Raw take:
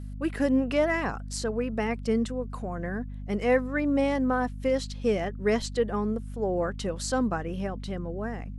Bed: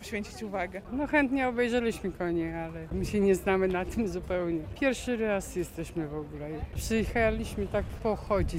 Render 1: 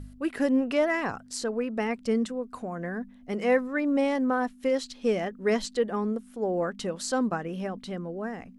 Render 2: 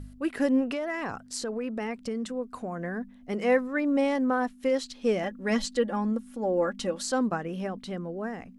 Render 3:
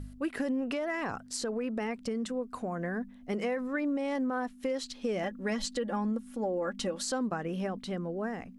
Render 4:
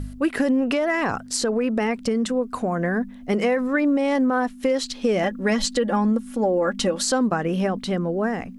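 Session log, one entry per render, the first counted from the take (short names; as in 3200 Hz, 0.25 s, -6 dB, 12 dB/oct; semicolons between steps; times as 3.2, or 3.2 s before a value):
de-hum 50 Hz, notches 4
0.68–2.33 compressor 10:1, threshold -27 dBFS; 5.23–7.03 comb 3.6 ms
limiter -20 dBFS, peak gain reduction 8 dB; compressor, threshold -28 dBFS, peak gain reduction 5.5 dB
gain +11 dB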